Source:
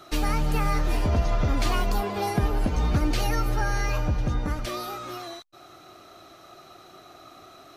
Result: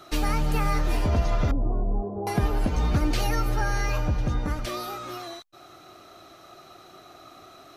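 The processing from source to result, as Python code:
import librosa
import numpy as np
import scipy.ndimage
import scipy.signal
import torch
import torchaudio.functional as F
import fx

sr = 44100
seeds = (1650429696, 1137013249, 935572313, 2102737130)

y = fx.bessel_lowpass(x, sr, hz=510.0, order=6, at=(1.51, 2.27))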